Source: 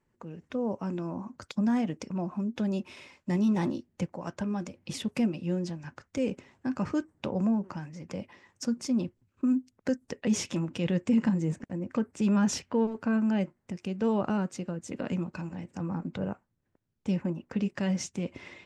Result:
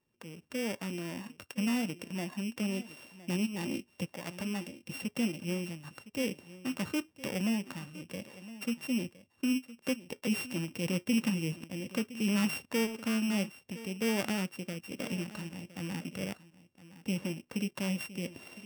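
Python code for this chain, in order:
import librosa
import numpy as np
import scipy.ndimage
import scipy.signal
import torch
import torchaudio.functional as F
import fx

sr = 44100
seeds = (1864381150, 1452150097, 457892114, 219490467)

p1 = np.r_[np.sort(x[:len(x) // 16 * 16].reshape(-1, 16), axis=1).ravel(), x[len(x) // 16 * 16:]]
p2 = fx.low_shelf(p1, sr, hz=68.0, db=-11.5)
p3 = fx.over_compress(p2, sr, threshold_db=-32.0, ratio=-1.0, at=(3.45, 3.93), fade=0.02)
p4 = p3 + fx.echo_single(p3, sr, ms=1013, db=-16.5, dry=0)
y = p4 * 10.0 ** (-3.5 / 20.0)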